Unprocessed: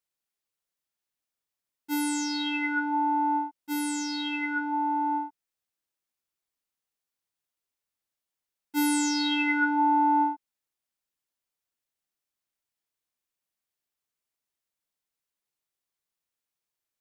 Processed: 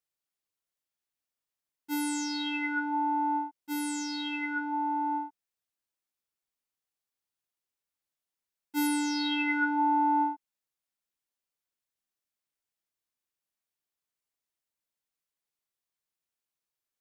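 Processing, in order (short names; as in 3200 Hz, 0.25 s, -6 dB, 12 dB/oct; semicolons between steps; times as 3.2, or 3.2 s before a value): 8.87–9.52 bell 7100 Hz -10 dB 0.43 oct; gain -3 dB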